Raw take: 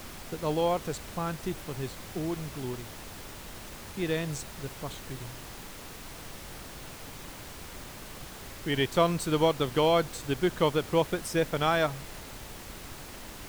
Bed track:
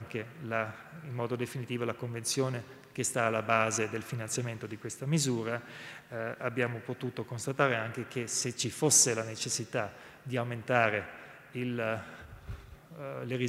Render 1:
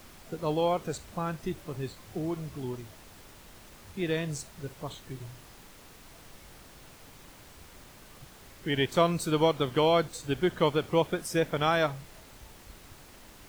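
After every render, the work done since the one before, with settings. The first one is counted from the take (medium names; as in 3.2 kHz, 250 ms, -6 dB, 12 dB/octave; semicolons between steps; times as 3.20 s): noise print and reduce 8 dB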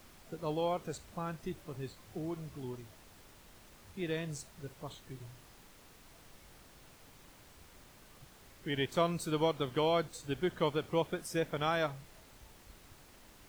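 trim -6.5 dB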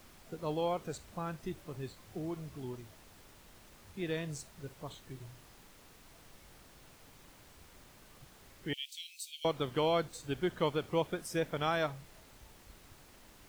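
8.73–9.45 s: steep high-pass 2.6 kHz 48 dB/octave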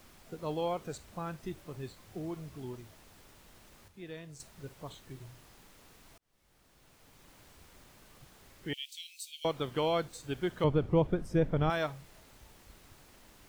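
3.88–4.40 s: gain -8.5 dB; 6.18–7.40 s: fade in; 10.64–11.70 s: tilt EQ -4 dB/octave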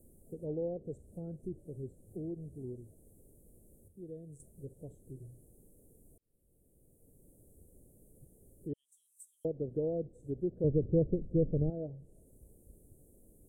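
low-pass that closes with the level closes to 780 Hz, closed at -28 dBFS; elliptic band-stop 500–9200 Hz, stop band 40 dB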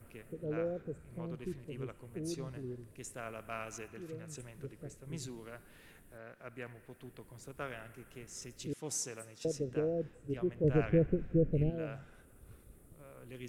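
add bed track -15 dB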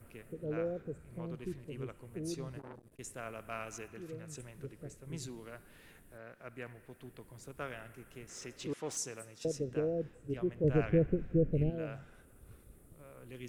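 2.59–2.99 s: transformer saturation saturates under 1.1 kHz; 8.29–8.97 s: overdrive pedal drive 16 dB, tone 1.9 kHz, clips at -27 dBFS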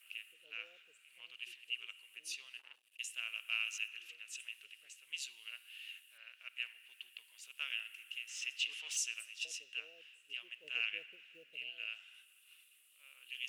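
short-mantissa float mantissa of 8-bit; resonant high-pass 2.8 kHz, resonance Q 13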